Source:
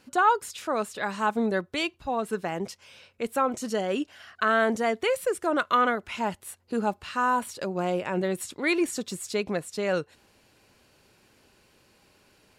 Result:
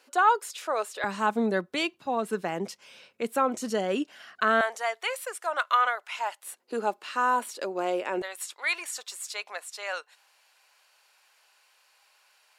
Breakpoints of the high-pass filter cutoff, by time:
high-pass filter 24 dB per octave
410 Hz
from 0:01.04 160 Hz
from 0:04.61 680 Hz
from 0:06.44 290 Hz
from 0:08.22 760 Hz

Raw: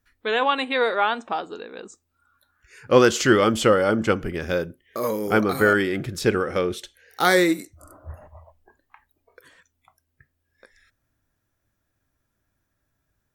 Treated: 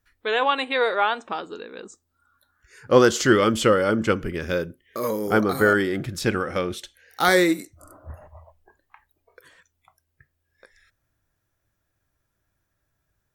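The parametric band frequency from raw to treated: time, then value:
parametric band −7 dB 0.39 octaves
230 Hz
from 0:01.25 730 Hz
from 0:01.83 2,500 Hz
from 0:03.31 740 Hz
from 0:05.10 2,500 Hz
from 0:06.04 420 Hz
from 0:07.28 66 Hz
from 0:08.10 250 Hz

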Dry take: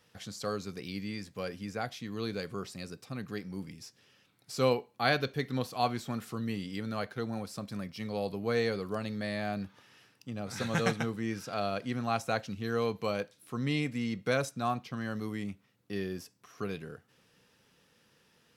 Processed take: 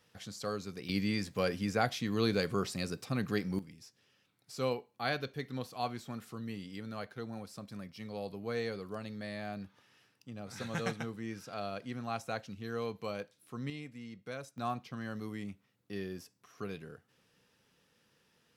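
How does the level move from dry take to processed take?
−2.5 dB
from 0:00.89 +5.5 dB
from 0:03.59 −6.5 dB
from 0:13.70 −13.5 dB
from 0:14.58 −4.5 dB

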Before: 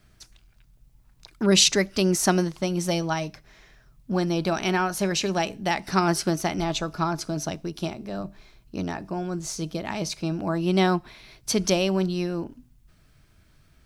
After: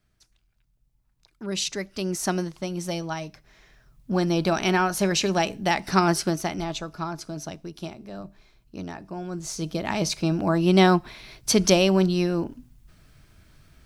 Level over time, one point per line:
0:01.42 −12 dB
0:02.31 −4.5 dB
0:03.27 −4.5 dB
0:04.34 +2 dB
0:05.99 +2 dB
0:06.90 −5.5 dB
0:09.07 −5.5 dB
0:09.94 +4 dB

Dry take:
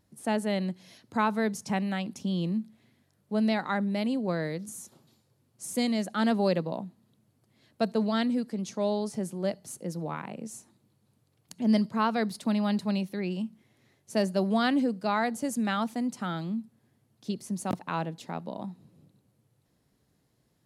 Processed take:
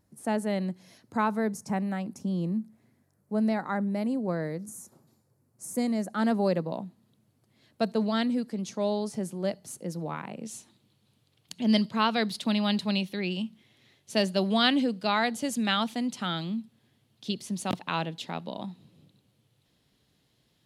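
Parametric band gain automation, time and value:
parametric band 3,300 Hz 1.1 octaves
−5.5 dB
from 0:01.37 −12.5 dB
from 0:06.13 −6.5 dB
from 0:06.71 +1.5 dB
from 0:10.43 +12 dB

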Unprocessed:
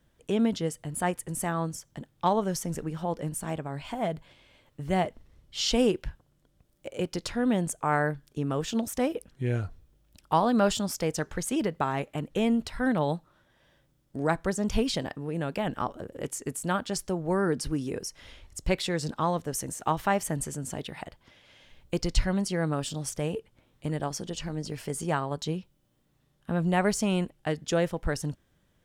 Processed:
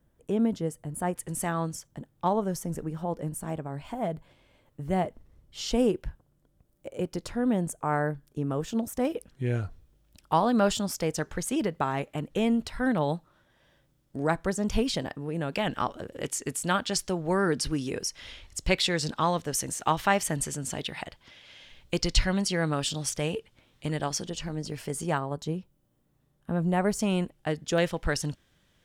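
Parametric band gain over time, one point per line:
parametric band 3,600 Hz 2.5 octaves
−10.5 dB
from 0:01.16 +1 dB
from 0:01.87 −7.5 dB
from 0:09.05 0 dB
from 0:15.53 +7.5 dB
from 0:24.27 +0.5 dB
from 0:25.18 −7 dB
from 0:26.99 −0.5 dB
from 0:27.78 +8 dB

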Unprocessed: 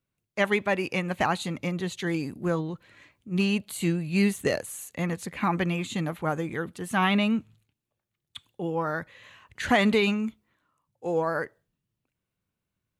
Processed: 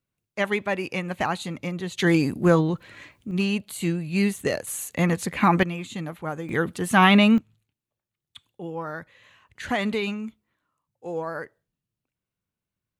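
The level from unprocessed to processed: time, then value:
−0.5 dB
from 0:01.98 +9 dB
from 0:03.31 +0.5 dB
from 0:04.67 +7 dB
from 0:05.63 −3 dB
from 0:06.49 +7.5 dB
from 0:07.38 −4 dB

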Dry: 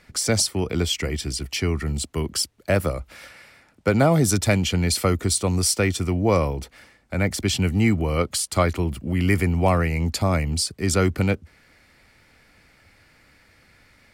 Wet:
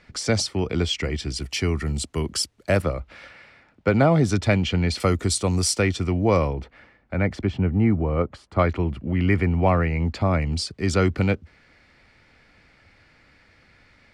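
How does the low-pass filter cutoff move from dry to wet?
5,200 Hz
from 0:01.36 9,300 Hz
from 0:02.82 3,700 Hz
from 0:05.00 8,600 Hz
from 0:05.82 4,900 Hz
from 0:06.53 2,400 Hz
from 0:07.45 1,300 Hz
from 0:08.59 2,700 Hz
from 0:10.42 5,000 Hz

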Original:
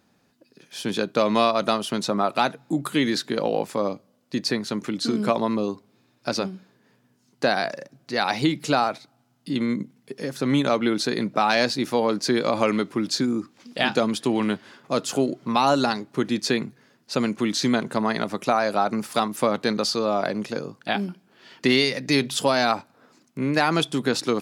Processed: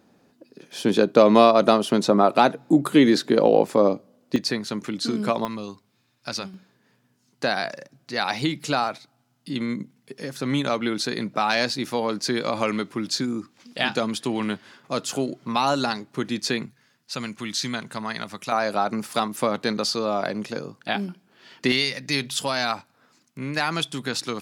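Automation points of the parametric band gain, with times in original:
parametric band 390 Hz 2.5 octaves
+8 dB
from 0:04.36 −2 dB
from 0:05.45 −11 dB
from 0:06.54 −4 dB
from 0:16.66 −12.5 dB
from 0:18.52 −2 dB
from 0:21.72 −8.5 dB

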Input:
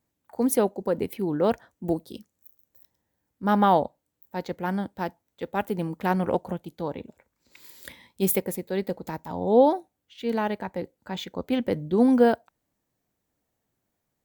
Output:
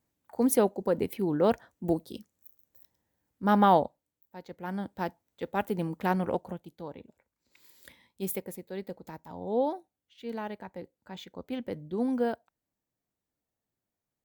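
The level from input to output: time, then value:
0:03.76 −1.5 dB
0:04.41 −14 dB
0:04.94 −2.5 dB
0:06.04 −2.5 dB
0:06.85 −10 dB

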